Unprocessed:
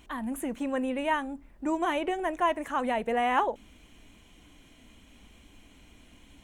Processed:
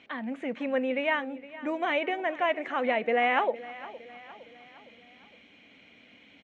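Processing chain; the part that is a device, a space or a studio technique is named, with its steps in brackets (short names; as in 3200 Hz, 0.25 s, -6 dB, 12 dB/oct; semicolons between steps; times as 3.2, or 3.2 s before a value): HPF 59 Hz; LPF 11000 Hz; kitchen radio (speaker cabinet 210–4400 Hz, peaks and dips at 340 Hz -7 dB, 510 Hz +4 dB, 1000 Hz -8 dB, 2200 Hz +8 dB); feedback echo 0.462 s, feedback 50%, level -17 dB; gain +1.5 dB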